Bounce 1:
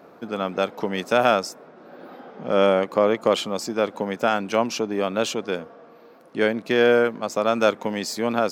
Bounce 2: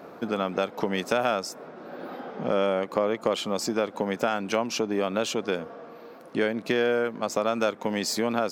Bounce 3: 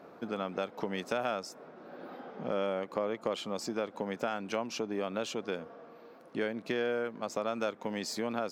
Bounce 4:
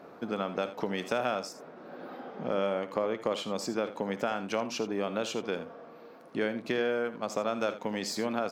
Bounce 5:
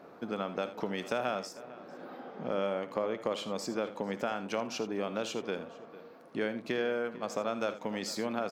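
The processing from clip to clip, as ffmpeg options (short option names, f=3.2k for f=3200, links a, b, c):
-af "acompressor=threshold=-28dB:ratio=3,volume=4dB"
-af "highshelf=f=9.1k:g=-6,volume=-8dB"
-af "aecho=1:1:56|80:0.141|0.211,volume=2.5dB"
-filter_complex "[0:a]asplit=2[a][b];[b]adelay=449,volume=-17dB,highshelf=f=4k:g=-10.1[c];[a][c]amix=inputs=2:normalize=0,volume=-2.5dB"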